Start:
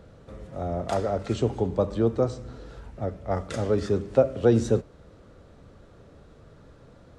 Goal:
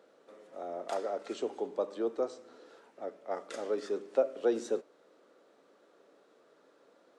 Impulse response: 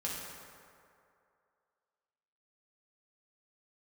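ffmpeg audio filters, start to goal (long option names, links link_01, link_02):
-af "highpass=frequency=310:width=0.5412,highpass=frequency=310:width=1.3066,volume=-7.5dB"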